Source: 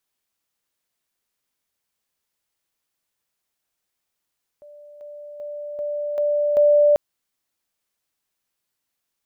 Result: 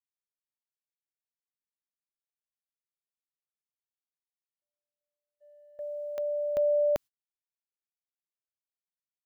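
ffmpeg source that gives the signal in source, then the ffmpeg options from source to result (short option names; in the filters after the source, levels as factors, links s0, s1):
-f lavfi -i "aevalsrc='pow(10,(-41.5+6*floor(t/0.39))/20)*sin(2*PI*588*t)':d=2.34:s=44100"
-af "agate=range=0.00501:threshold=0.0282:ratio=16:detection=peak,equalizer=f=600:w=0.75:g=-10"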